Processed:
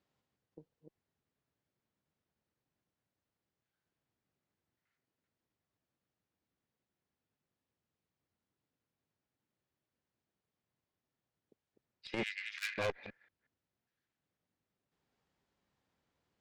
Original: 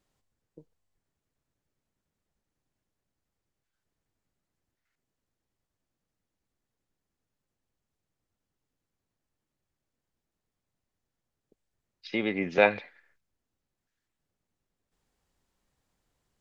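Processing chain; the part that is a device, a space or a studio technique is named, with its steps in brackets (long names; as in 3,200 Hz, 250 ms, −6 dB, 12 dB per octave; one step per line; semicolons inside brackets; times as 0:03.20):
delay that plays each chunk backwards 182 ms, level −4.5 dB
valve radio (band-pass filter 90–4,600 Hz; tube saturation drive 27 dB, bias 0.65; saturating transformer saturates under 260 Hz)
0:12.23–0:12.78: Butterworth high-pass 1,600 Hz 36 dB per octave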